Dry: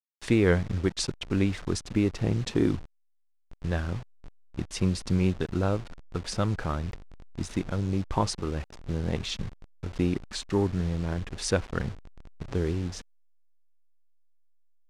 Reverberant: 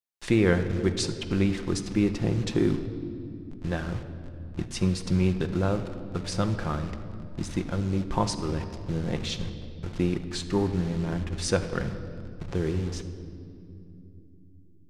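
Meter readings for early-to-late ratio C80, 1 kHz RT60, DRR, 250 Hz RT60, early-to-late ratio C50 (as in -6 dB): 11.5 dB, 2.3 s, 7.0 dB, 4.9 s, 10.5 dB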